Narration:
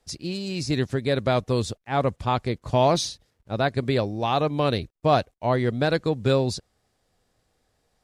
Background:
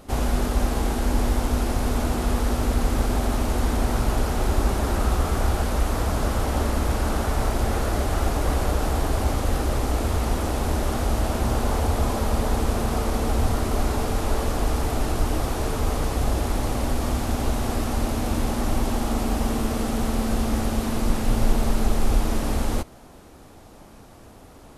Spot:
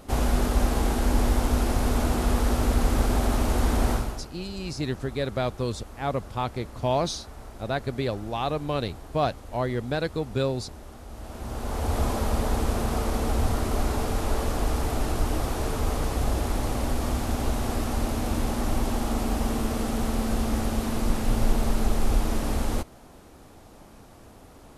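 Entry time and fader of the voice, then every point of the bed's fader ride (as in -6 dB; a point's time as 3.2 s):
4.10 s, -5.0 dB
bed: 3.92 s -0.5 dB
4.3 s -19.5 dB
11.06 s -19.5 dB
11.97 s -2.5 dB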